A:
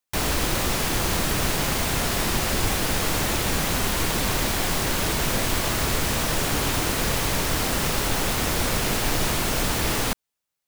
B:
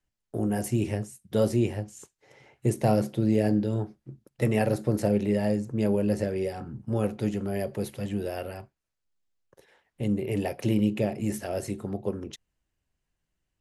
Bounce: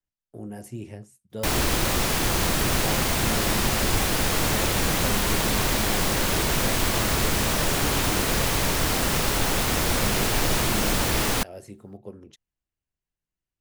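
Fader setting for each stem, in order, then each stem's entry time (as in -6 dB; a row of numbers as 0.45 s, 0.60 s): +0.5 dB, -10.0 dB; 1.30 s, 0.00 s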